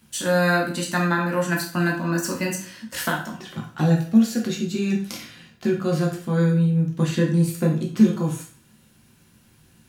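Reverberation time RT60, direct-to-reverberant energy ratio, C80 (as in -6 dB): 0.45 s, -1.5 dB, 12.0 dB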